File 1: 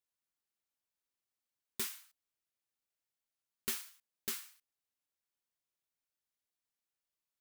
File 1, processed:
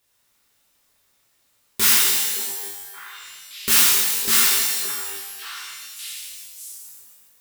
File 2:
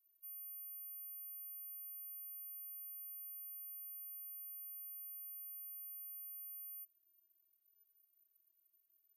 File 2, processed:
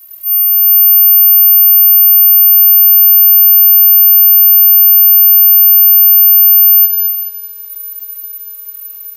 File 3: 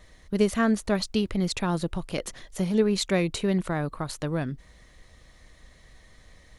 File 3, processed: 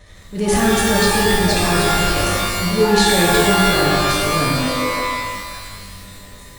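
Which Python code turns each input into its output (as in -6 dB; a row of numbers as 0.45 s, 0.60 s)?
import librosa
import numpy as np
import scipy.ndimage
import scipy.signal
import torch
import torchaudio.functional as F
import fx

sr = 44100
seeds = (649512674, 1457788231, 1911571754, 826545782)

y = fx.echo_stepped(x, sr, ms=571, hz=480.0, octaves=1.4, feedback_pct=70, wet_db=-7.5)
y = fx.transient(y, sr, attack_db=-9, sustain_db=8)
y = fx.rev_shimmer(y, sr, seeds[0], rt60_s=1.4, semitones=12, shimmer_db=-2, drr_db=-4.0)
y = y * 10.0 ** (-1.5 / 20.0) / np.max(np.abs(y))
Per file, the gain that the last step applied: +20.5 dB, +37.5 dB, +3.5 dB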